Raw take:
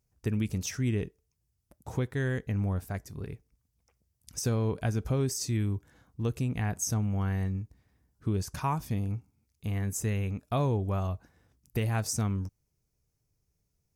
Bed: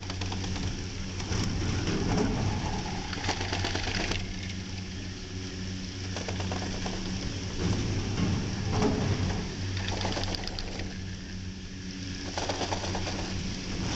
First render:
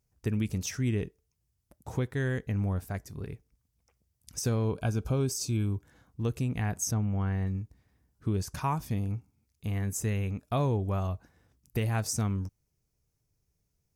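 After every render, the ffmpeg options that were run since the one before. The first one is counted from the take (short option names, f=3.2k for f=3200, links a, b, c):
-filter_complex "[0:a]asettb=1/sr,asplit=3[a][b][c];[a]atrim=end=4.644[d];[b]atrim=start=4.64:end=5.73,asetpts=PTS-STARTPTS,afade=t=in:d=0.004:c=qsin,afade=t=out:st=1.086:d=0.004:c=qsin,asuperstop=centerf=1900:order=8:qfactor=4.1[e];[c]atrim=start=5.726[f];[d][e]acrossfade=d=0.004:c1=hsin:c2=qsin[g];[g][f]acrossfade=d=0.004:c1=qsin:c2=hsin,asettb=1/sr,asplit=3[h][i][j];[h]atrim=end=6.914[k];[i]atrim=start=6.91:end=7.47,asetpts=PTS-STARTPTS,afade=t=in:d=0.004:c=qsin,afade=t=out:st=0.556:d=0.004:c=qsin,equalizer=f=13k:w=0.35:g=-14[l];[j]atrim=start=7.466[m];[k][l]acrossfade=d=0.004:c1=hsin:c2=qsin[n];[n][m]acrossfade=d=0.004:c1=qsin:c2=hsin"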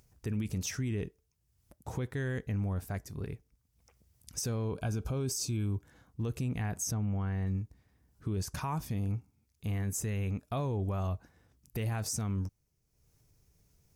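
-af "alimiter=level_in=1dB:limit=-24dB:level=0:latency=1:release=26,volume=-1dB,acompressor=mode=upward:threshold=-56dB:ratio=2.5"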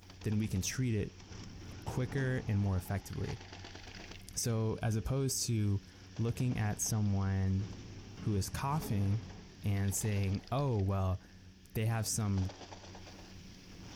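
-filter_complex "[1:a]volume=-18.5dB[a];[0:a][a]amix=inputs=2:normalize=0"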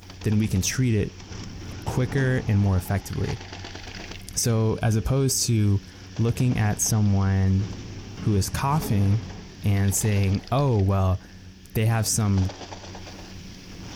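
-af "volume=11.5dB"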